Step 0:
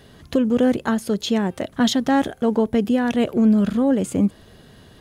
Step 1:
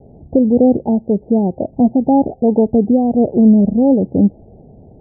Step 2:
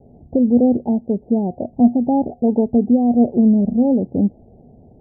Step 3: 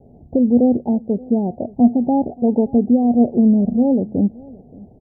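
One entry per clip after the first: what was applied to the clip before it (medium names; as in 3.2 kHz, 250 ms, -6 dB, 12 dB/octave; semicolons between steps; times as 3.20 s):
steep low-pass 840 Hz 96 dB/octave; trim +6.5 dB
feedback comb 240 Hz, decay 0.18 s, harmonics odd, mix 60%; trim +2 dB
delay 576 ms -23 dB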